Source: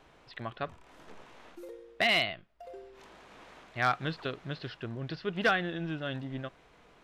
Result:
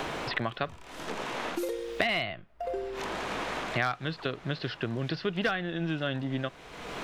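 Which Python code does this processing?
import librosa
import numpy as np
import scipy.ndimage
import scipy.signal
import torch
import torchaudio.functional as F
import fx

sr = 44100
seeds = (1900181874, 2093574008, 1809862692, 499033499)

y = fx.band_squash(x, sr, depth_pct=100)
y = F.gain(torch.from_numpy(y), 3.5).numpy()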